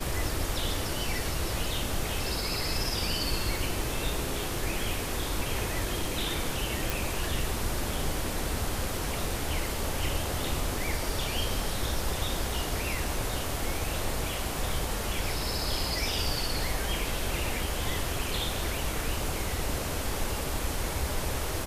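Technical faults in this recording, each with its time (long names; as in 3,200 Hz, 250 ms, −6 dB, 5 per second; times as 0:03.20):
0:06.90: click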